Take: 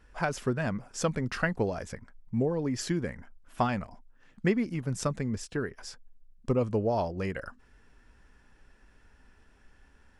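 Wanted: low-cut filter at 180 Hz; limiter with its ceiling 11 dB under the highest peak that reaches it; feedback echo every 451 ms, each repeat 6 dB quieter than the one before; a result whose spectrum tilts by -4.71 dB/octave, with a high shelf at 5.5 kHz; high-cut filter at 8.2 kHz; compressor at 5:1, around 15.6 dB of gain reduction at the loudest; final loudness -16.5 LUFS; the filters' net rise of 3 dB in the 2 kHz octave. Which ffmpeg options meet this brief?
-af "highpass=180,lowpass=8200,equalizer=f=2000:t=o:g=5,highshelf=f=5500:g=-8.5,acompressor=threshold=0.00891:ratio=5,alimiter=level_in=3.16:limit=0.0631:level=0:latency=1,volume=0.316,aecho=1:1:451|902|1353|1804|2255|2706:0.501|0.251|0.125|0.0626|0.0313|0.0157,volume=31.6"

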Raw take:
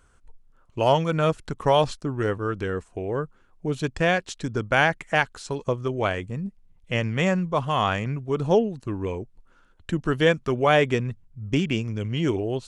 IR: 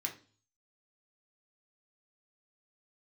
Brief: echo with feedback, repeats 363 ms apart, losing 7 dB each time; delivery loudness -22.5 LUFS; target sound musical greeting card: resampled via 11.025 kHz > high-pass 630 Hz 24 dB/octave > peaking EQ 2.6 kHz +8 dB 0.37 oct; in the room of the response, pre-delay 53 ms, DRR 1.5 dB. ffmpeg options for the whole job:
-filter_complex "[0:a]aecho=1:1:363|726|1089|1452|1815:0.447|0.201|0.0905|0.0407|0.0183,asplit=2[s0][s1];[1:a]atrim=start_sample=2205,adelay=53[s2];[s1][s2]afir=irnorm=-1:irlink=0,volume=0.75[s3];[s0][s3]amix=inputs=2:normalize=0,aresample=11025,aresample=44100,highpass=f=630:w=0.5412,highpass=f=630:w=1.3066,equalizer=f=2600:t=o:w=0.37:g=8,volume=1.12"

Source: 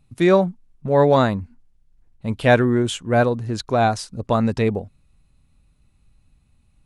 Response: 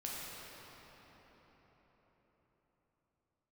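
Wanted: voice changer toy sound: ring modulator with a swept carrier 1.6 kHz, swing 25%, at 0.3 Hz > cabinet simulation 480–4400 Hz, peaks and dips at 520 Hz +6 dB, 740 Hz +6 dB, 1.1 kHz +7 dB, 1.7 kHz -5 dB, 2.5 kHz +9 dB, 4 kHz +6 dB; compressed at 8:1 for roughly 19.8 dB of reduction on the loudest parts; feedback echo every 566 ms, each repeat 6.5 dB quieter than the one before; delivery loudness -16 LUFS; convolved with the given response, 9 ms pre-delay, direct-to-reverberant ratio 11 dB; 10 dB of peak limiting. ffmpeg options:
-filter_complex "[0:a]acompressor=threshold=0.0282:ratio=8,alimiter=level_in=2:limit=0.0631:level=0:latency=1,volume=0.501,aecho=1:1:566|1132|1698|2264|2830|3396:0.473|0.222|0.105|0.0491|0.0231|0.0109,asplit=2[s0][s1];[1:a]atrim=start_sample=2205,adelay=9[s2];[s1][s2]afir=irnorm=-1:irlink=0,volume=0.237[s3];[s0][s3]amix=inputs=2:normalize=0,aeval=exprs='val(0)*sin(2*PI*1600*n/s+1600*0.25/0.3*sin(2*PI*0.3*n/s))':c=same,highpass=480,equalizer=f=520:t=q:w=4:g=6,equalizer=f=740:t=q:w=4:g=6,equalizer=f=1100:t=q:w=4:g=7,equalizer=f=1700:t=q:w=4:g=-5,equalizer=f=2500:t=q:w=4:g=9,equalizer=f=4000:t=q:w=4:g=6,lowpass=f=4400:w=0.5412,lowpass=f=4400:w=1.3066,volume=10.6"

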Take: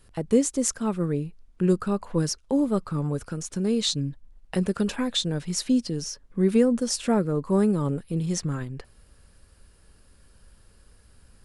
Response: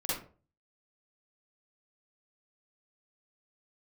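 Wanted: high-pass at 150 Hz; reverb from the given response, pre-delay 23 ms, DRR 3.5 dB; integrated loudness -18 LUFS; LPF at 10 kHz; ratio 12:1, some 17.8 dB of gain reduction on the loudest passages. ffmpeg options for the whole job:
-filter_complex "[0:a]highpass=150,lowpass=10000,acompressor=threshold=0.0224:ratio=12,asplit=2[s0][s1];[1:a]atrim=start_sample=2205,adelay=23[s2];[s1][s2]afir=irnorm=-1:irlink=0,volume=0.355[s3];[s0][s3]amix=inputs=2:normalize=0,volume=7.94"

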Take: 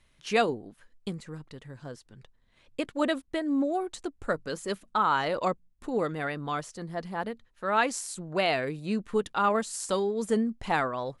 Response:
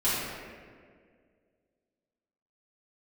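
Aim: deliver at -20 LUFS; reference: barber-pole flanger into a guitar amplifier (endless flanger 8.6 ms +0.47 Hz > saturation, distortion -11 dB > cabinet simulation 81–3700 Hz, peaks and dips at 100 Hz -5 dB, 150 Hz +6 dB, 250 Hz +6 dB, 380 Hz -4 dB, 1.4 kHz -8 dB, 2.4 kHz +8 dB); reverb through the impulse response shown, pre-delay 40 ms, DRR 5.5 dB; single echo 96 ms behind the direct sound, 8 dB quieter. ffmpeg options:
-filter_complex "[0:a]aecho=1:1:96:0.398,asplit=2[s0][s1];[1:a]atrim=start_sample=2205,adelay=40[s2];[s1][s2]afir=irnorm=-1:irlink=0,volume=0.133[s3];[s0][s3]amix=inputs=2:normalize=0,asplit=2[s4][s5];[s5]adelay=8.6,afreqshift=0.47[s6];[s4][s6]amix=inputs=2:normalize=1,asoftclip=threshold=0.0447,highpass=81,equalizer=f=100:t=q:w=4:g=-5,equalizer=f=150:t=q:w=4:g=6,equalizer=f=250:t=q:w=4:g=6,equalizer=f=380:t=q:w=4:g=-4,equalizer=f=1400:t=q:w=4:g=-8,equalizer=f=2400:t=q:w=4:g=8,lowpass=f=3700:w=0.5412,lowpass=f=3700:w=1.3066,volume=5.01"

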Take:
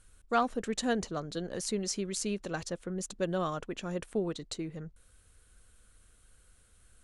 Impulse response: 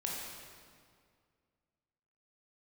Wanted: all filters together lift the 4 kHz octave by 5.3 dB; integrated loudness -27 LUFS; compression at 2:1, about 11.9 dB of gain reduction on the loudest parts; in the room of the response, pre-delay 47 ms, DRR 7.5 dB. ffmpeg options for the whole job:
-filter_complex "[0:a]equalizer=f=4000:t=o:g=6.5,acompressor=threshold=0.00631:ratio=2,asplit=2[s0][s1];[1:a]atrim=start_sample=2205,adelay=47[s2];[s1][s2]afir=irnorm=-1:irlink=0,volume=0.316[s3];[s0][s3]amix=inputs=2:normalize=0,volume=5.01"

